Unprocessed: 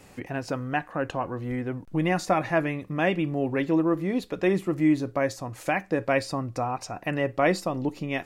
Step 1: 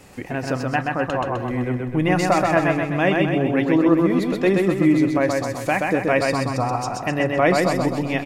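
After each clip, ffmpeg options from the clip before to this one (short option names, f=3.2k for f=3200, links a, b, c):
-af "aecho=1:1:128|256|384|512|640|768|896:0.708|0.375|0.199|0.105|0.0559|0.0296|0.0157,volume=4.5dB"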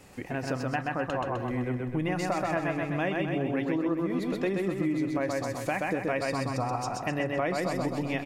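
-af "acompressor=threshold=-19dB:ratio=6,volume=-6dB"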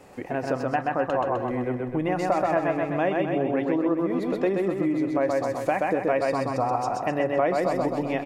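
-af "equalizer=f=610:w=0.46:g=11,volume=-3.5dB"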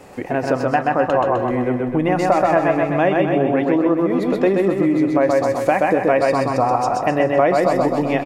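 -af "aecho=1:1:148|296|444|592:0.188|0.0866|0.0399|0.0183,volume=7.5dB"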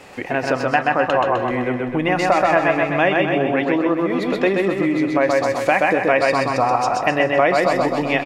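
-af "equalizer=f=2.9k:t=o:w=2.5:g=10.5,volume=-3dB"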